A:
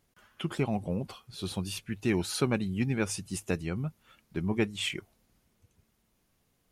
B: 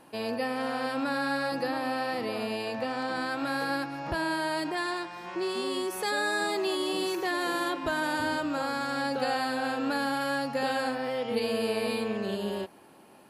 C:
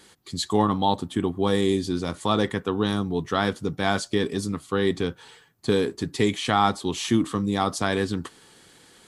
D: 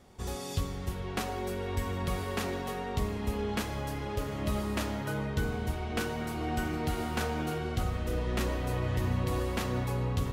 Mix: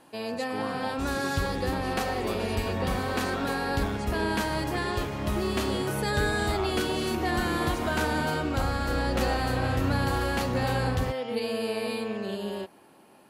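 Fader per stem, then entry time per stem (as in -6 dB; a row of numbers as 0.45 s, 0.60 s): -14.5 dB, -1.0 dB, -16.0 dB, +2.0 dB; 0.15 s, 0.00 s, 0.00 s, 0.80 s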